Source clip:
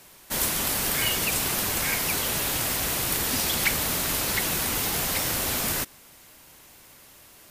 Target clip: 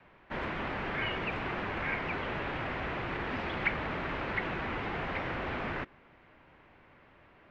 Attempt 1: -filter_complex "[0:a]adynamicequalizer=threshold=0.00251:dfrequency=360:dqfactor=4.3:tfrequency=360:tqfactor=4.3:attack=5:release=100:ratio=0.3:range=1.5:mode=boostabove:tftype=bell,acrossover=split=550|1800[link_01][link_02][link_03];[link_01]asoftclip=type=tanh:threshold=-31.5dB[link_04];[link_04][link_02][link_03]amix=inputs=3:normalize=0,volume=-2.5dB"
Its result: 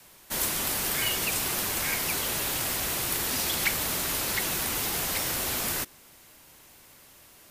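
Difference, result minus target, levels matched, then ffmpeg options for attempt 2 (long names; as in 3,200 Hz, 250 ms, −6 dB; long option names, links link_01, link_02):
2,000 Hz band −6.5 dB
-filter_complex "[0:a]adynamicequalizer=threshold=0.00251:dfrequency=360:dqfactor=4.3:tfrequency=360:tqfactor=4.3:attack=5:release=100:ratio=0.3:range=1.5:mode=boostabove:tftype=bell,lowpass=frequency=2300:width=0.5412,lowpass=frequency=2300:width=1.3066,acrossover=split=550|1800[link_01][link_02][link_03];[link_01]asoftclip=type=tanh:threshold=-31.5dB[link_04];[link_04][link_02][link_03]amix=inputs=3:normalize=0,volume=-2.5dB"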